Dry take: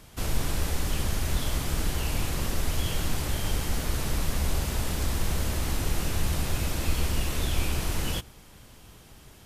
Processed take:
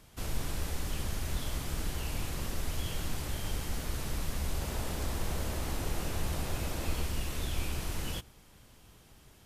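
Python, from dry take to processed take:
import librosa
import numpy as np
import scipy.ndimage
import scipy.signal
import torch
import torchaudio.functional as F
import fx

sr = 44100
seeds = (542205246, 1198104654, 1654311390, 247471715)

y = fx.peak_eq(x, sr, hz=610.0, db=4.5, octaves=2.1, at=(4.61, 7.02))
y = y * 10.0 ** (-7.0 / 20.0)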